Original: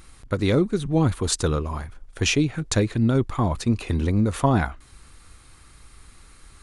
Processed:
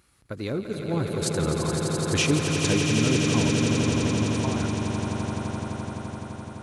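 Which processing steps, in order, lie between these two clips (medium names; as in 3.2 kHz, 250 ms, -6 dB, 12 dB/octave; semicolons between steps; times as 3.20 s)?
Doppler pass-by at 2.12 s, 18 m/s, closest 15 m; high-pass 79 Hz; echo with a slow build-up 85 ms, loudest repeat 8, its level -7 dB; trim -2.5 dB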